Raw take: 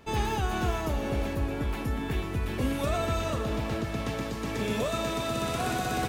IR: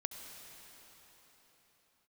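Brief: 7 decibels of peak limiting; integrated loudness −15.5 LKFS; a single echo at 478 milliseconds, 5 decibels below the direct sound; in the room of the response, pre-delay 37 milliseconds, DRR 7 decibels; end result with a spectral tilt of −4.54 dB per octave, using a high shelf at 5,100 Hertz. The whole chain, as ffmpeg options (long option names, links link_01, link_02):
-filter_complex "[0:a]highshelf=frequency=5100:gain=9,alimiter=limit=-22dB:level=0:latency=1,aecho=1:1:478:0.562,asplit=2[link_01][link_02];[1:a]atrim=start_sample=2205,adelay=37[link_03];[link_02][link_03]afir=irnorm=-1:irlink=0,volume=-6.5dB[link_04];[link_01][link_04]amix=inputs=2:normalize=0,volume=14.5dB"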